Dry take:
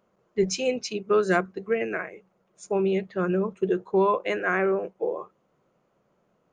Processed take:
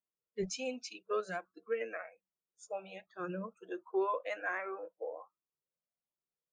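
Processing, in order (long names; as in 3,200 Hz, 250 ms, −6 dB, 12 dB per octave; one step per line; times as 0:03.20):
noise reduction from a noise print of the clip's start 24 dB
0:01.20–0:01.68: downward compressor 2 to 1, threshold −29 dBFS, peak gain reduction 7 dB
flanger whose copies keep moving one way rising 1.3 Hz
level −6.5 dB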